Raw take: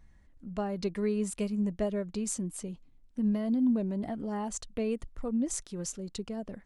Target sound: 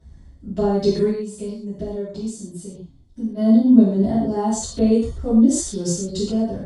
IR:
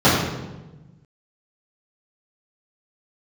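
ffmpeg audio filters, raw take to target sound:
-filter_complex "[0:a]highshelf=f=3200:t=q:w=3:g=9,asplit=3[s0][s1][s2];[s0]afade=t=out:st=1.08:d=0.02[s3];[s1]acompressor=threshold=0.00794:ratio=3,afade=t=in:st=1.08:d=0.02,afade=t=out:st=3.36:d=0.02[s4];[s2]afade=t=in:st=3.36:d=0.02[s5];[s3][s4][s5]amix=inputs=3:normalize=0[s6];[1:a]atrim=start_sample=2205,atrim=end_sample=3528,asetrate=22491,aresample=44100[s7];[s6][s7]afir=irnorm=-1:irlink=0,volume=0.141"

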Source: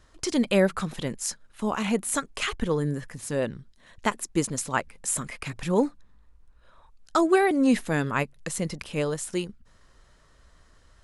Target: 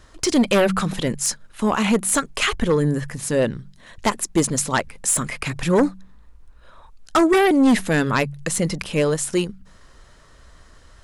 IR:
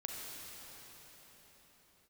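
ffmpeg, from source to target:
-af "bandreject=f=47.35:t=h:w=4,bandreject=f=94.7:t=h:w=4,bandreject=f=142.05:t=h:w=4,bandreject=f=189.4:t=h:w=4,aeval=exprs='0.398*sin(PI/2*2.51*val(0)/0.398)':c=same,volume=0.708"

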